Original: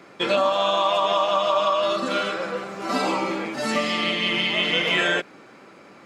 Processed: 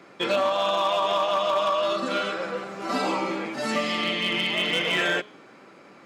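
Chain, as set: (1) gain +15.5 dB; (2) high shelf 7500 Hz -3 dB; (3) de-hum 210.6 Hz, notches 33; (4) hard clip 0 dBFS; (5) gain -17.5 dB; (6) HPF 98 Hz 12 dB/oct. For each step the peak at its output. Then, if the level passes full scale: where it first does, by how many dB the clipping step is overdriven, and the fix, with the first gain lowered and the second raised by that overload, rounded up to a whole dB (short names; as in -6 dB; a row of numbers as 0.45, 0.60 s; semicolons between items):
+7.0, +7.0, +7.0, 0.0, -17.5, -15.0 dBFS; step 1, 7.0 dB; step 1 +8.5 dB, step 5 -10.5 dB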